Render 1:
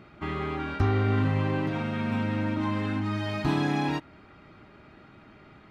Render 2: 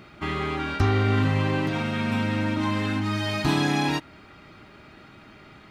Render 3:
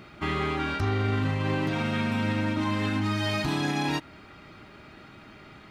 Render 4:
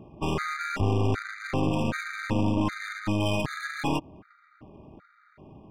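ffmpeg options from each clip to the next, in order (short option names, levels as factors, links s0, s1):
-af "highshelf=f=3000:g=11,volume=1.33"
-af "alimiter=limit=0.126:level=0:latency=1:release=86"
-af "adynamicsmooth=sensitivity=5.5:basefreq=760,aeval=exprs='(tanh(17.8*val(0)+0.75)-tanh(0.75))/17.8':c=same,afftfilt=real='re*gt(sin(2*PI*1.3*pts/sr)*(1-2*mod(floor(b*sr/1024/1200),2)),0)':imag='im*gt(sin(2*PI*1.3*pts/sr)*(1-2*mod(floor(b*sr/1024/1200),2)),0)':win_size=1024:overlap=0.75,volume=2.24"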